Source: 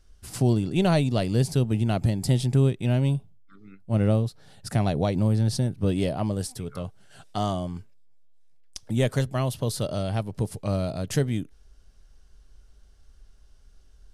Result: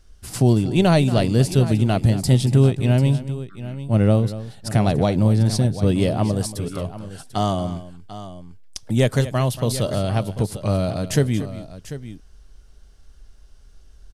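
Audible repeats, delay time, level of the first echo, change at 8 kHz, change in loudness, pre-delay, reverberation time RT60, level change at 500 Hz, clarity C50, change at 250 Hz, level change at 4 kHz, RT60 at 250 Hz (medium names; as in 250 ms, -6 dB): 2, 231 ms, -14.5 dB, +6.0 dB, +5.5 dB, no reverb, no reverb, +6.0 dB, no reverb, +6.0 dB, +6.0 dB, no reverb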